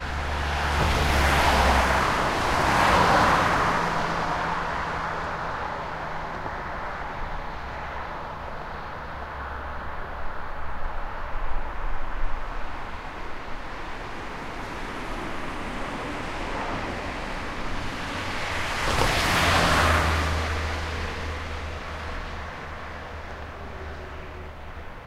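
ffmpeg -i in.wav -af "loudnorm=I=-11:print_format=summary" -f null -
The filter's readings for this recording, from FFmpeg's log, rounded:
Input Integrated:    -26.9 LUFS
Input True Peak:      -6.9 dBTP
Input LRA:            14.9 LU
Input Threshold:     -37.3 LUFS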